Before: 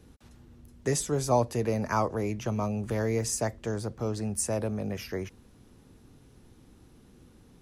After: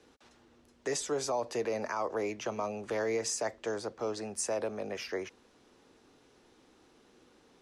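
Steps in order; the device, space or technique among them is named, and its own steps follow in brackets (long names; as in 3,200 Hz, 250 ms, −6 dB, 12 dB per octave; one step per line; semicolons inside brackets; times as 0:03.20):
DJ mixer with the lows and highs turned down (three-way crossover with the lows and the highs turned down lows −21 dB, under 320 Hz, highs −21 dB, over 8,000 Hz; brickwall limiter −25 dBFS, peak gain reduction 10.5 dB)
level +1.5 dB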